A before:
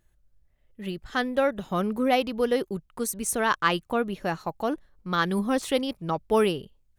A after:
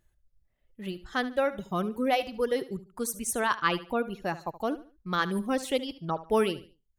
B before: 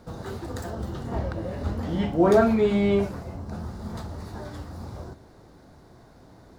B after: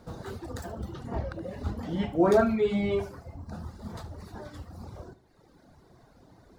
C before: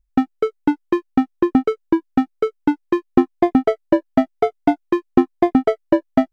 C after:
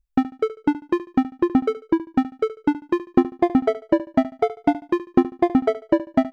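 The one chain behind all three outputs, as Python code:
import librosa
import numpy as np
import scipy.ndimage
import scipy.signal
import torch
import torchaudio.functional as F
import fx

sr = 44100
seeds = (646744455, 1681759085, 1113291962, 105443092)

y = fx.dereverb_blind(x, sr, rt60_s=1.3)
y = fx.echo_feedback(y, sr, ms=73, feedback_pct=30, wet_db=-15.5)
y = y * librosa.db_to_amplitude(-2.5)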